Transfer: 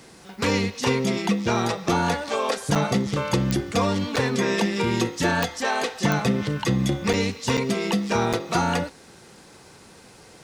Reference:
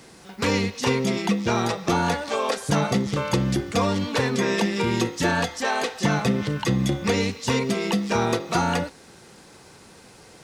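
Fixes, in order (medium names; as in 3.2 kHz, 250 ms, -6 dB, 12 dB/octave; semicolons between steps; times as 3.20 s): de-click; interpolate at 2.75/4.16/7.13/7.57/8.33 s, 6 ms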